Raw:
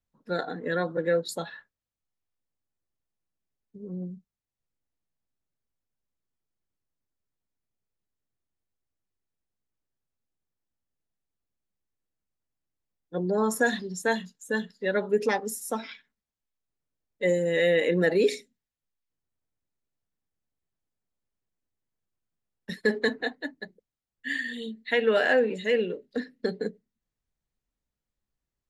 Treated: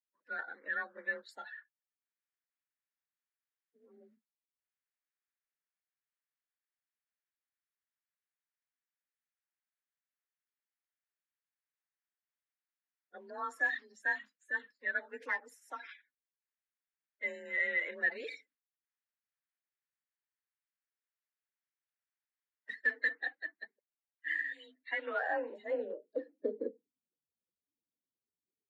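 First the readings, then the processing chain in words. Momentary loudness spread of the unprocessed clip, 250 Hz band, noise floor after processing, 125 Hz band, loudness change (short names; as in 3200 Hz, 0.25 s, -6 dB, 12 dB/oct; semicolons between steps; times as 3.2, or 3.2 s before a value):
15 LU, -21.0 dB, under -85 dBFS, under -35 dB, -9.5 dB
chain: bin magnitudes rounded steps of 30 dB; band-pass sweep 1700 Hz -> 370 Hz, 24.63–26.5; frequency shift +34 Hz; gain -2.5 dB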